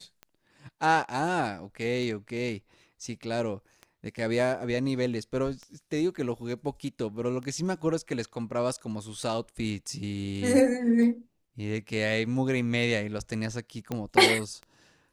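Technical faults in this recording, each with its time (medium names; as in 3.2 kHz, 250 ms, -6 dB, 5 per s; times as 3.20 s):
tick 33 1/3 rpm -28 dBFS
13.92 s: pop -18 dBFS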